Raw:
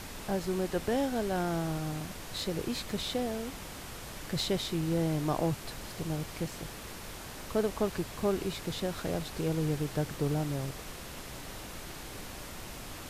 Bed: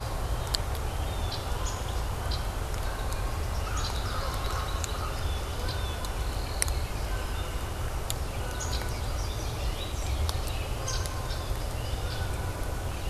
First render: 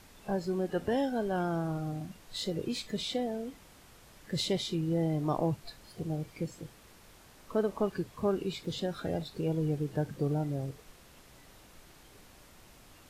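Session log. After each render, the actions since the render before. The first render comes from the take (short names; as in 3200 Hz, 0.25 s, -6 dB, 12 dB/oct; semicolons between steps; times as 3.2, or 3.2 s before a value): noise print and reduce 13 dB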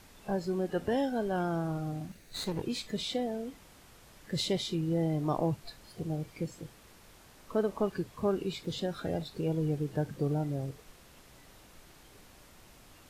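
2.08–2.62 minimum comb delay 0.47 ms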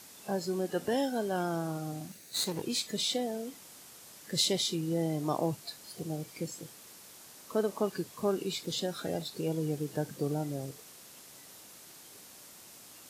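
HPF 150 Hz 12 dB/oct; tone controls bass -1 dB, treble +11 dB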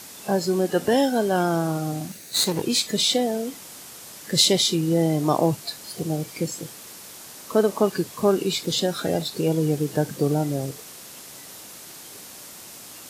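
gain +10.5 dB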